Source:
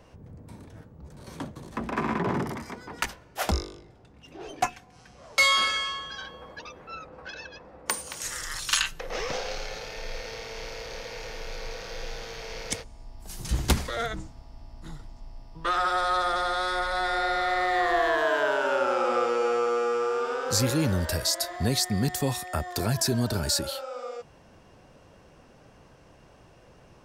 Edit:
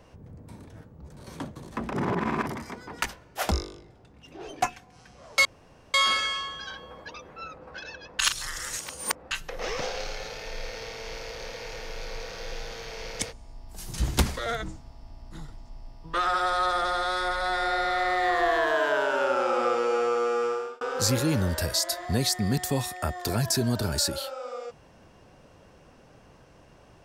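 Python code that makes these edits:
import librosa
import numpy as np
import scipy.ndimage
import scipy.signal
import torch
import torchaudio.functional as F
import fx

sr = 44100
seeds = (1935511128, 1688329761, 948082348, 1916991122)

y = fx.edit(x, sr, fx.reverse_span(start_s=1.93, length_s=0.53),
    fx.insert_room_tone(at_s=5.45, length_s=0.49),
    fx.reverse_span(start_s=7.7, length_s=1.12),
    fx.fade_out_span(start_s=19.98, length_s=0.34), tone=tone)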